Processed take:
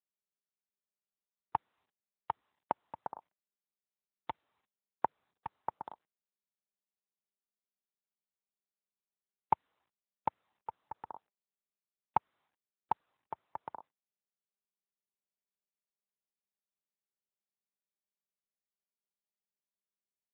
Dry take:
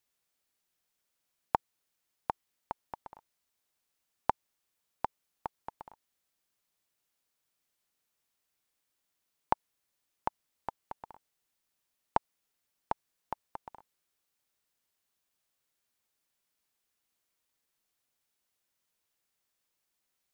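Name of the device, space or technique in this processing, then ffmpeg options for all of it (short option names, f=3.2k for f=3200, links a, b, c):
mobile call with aggressive noise cancelling: -filter_complex "[0:a]asettb=1/sr,asplit=3[a][b][c];[a]atrim=end=1.554[d];[b]atrim=start=1.55:end=2.81,asetpts=PTS-STARTPTS,afade=t=in:d=0.004:c=qsin,afade=t=out:st=1.256:d=0.004:c=qsin,lowpass=5k[e];[c]atrim=start=2.806[f];[d][e]acrossfade=d=0.004:c1=hsin:c2=qsin[g];[g][f]acrossfade=d=0.004:c1=qsin:c2=hsin,highpass=110,afftdn=nr=34:nf=-61,volume=8dB" -ar 8000 -c:a libopencore_amrnb -b:a 12200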